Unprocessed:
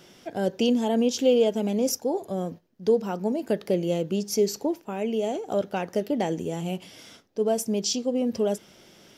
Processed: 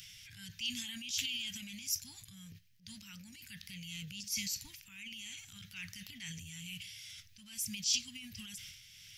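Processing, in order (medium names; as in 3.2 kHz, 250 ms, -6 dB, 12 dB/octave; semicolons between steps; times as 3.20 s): upward compressor, threshold -42 dBFS; Chebyshev band-stop 110–2200 Hz, order 3; transient shaper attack -6 dB, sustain +9 dB; trim -1 dB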